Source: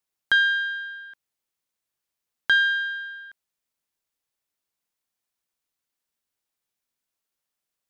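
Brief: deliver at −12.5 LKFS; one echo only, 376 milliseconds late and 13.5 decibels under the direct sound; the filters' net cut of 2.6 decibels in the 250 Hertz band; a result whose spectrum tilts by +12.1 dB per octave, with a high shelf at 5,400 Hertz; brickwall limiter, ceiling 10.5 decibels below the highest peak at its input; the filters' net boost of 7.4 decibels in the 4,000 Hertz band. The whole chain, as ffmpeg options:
ffmpeg -i in.wav -af "equalizer=frequency=250:width_type=o:gain=-3.5,equalizer=frequency=4000:width_type=o:gain=8,highshelf=frequency=5400:gain=6,alimiter=limit=-17dB:level=0:latency=1,aecho=1:1:376:0.211,volume=13dB" out.wav

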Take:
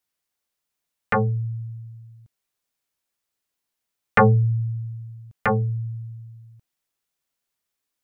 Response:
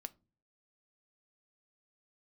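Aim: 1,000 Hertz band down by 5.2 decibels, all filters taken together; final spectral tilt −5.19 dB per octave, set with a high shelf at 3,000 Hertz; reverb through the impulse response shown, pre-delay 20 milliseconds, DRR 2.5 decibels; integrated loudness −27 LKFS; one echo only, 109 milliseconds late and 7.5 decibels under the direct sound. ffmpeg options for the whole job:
-filter_complex "[0:a]equalizer=frequency=1000:width_type=o:gain=-6.5,highshelf=frequency=3000:gain=-5,aecho=1:1:109:0.422,asplit=2[link_01][link_02];[1:a]atrim=start_sample=2205,adelay=20[link_03];[link_02][link_03]afir=irnorm=-1:irlink=0,volume=2dB[link_04];[link_01][link_04]amix=inputs=2:normalize=0,volume=-5.5dB"

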